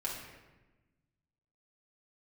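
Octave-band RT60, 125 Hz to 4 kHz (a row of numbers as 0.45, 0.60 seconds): 1.9, 1.7, 1.2, 1.1, 1.1, 0.80 seconds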